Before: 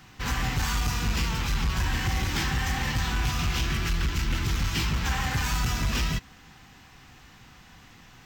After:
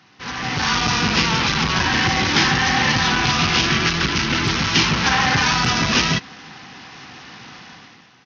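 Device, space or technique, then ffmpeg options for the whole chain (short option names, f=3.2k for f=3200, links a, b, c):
Bluetooth headset: -af "highpass=180,dynaudnorm=f=100:g=11:m=14dB,aresample=16000,aresample=44100" -ar 48000 -c:a sbc -b:a 64k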